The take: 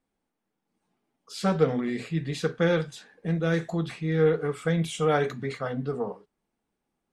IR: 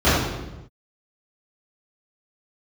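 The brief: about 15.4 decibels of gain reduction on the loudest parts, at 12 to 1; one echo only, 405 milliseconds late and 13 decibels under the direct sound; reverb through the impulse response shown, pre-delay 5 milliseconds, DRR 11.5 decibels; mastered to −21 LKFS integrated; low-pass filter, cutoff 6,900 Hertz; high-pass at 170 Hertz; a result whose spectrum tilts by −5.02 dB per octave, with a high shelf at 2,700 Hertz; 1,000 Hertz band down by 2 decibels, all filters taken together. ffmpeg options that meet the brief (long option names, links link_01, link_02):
-filter_complex "[0:a]highpass=170,lowpass=6900,equalizer=frequency=1000:width_type=o:gain=-4,highshelf=frequency=2700:gain=5,acompressor=threshold=-33dB:ratio=12,aecho=1:1:405:0.224,asplit=2[link_01][link_02];[1:a]atrim=start_sample=2205,adelay=5[link_03];[link_02][link_03]afir=irnorm=-1:irlink=0,volume=-35.5dB[link_04];[link_01][link_04]amix=inputs=2:normalize=0,volume=16.5dB"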